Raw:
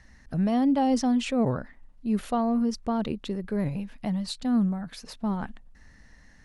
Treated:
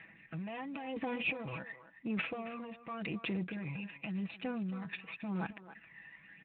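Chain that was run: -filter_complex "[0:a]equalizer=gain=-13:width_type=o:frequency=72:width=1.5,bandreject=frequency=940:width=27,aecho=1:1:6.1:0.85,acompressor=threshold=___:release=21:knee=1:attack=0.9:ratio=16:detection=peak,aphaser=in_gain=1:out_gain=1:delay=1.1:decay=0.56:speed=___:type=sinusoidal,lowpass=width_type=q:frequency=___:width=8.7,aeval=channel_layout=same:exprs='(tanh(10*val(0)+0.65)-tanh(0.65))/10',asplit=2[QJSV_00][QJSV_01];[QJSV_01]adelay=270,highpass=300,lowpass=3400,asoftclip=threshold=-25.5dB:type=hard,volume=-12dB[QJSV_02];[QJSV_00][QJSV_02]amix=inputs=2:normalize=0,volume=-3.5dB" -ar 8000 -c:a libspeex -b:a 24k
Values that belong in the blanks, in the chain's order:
-33dB, 0.91, 2500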